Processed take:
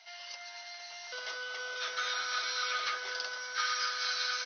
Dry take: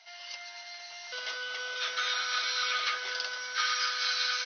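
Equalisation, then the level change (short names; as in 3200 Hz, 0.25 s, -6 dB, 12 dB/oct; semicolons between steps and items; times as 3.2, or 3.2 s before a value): notches 50/100/150/200/250/300/350 Hz; dynamic EQ 2900 Hz, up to -6 dB, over -46 dBFS, Q 0.89; 0.0 dB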